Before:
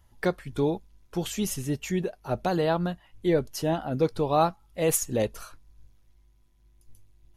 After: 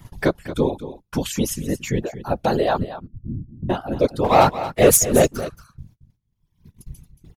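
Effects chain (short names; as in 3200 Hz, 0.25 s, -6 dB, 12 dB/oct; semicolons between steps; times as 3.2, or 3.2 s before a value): 2.84–3.7 inverse Chebyshev low-pass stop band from 650 Hz, stop band 70 dB; reverb removal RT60 1.7 s; gate -58 dBFS, range -38 dB; 4.24–5.41 sample leveller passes 2; upward compressor, threshold -31 dBFS; whisperiser; echo 0.227 s -13.5 dB; gain +6 dB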